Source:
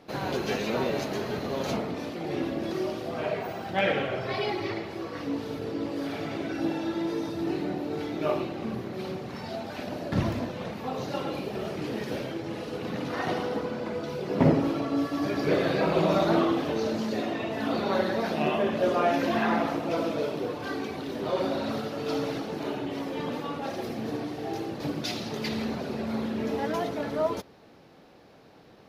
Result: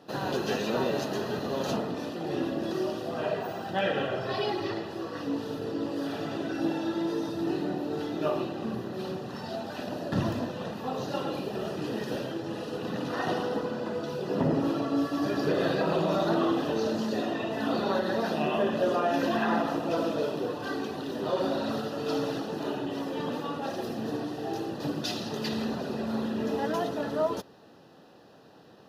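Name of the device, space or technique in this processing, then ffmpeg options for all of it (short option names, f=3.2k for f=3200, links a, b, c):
PA system with an anti-feedback notch: -af "highpass=100,asuperstop=centerf=2200:order=4:qfactor=4.7,alimiter=limit=-17dB:level=0:latency=1:release=101"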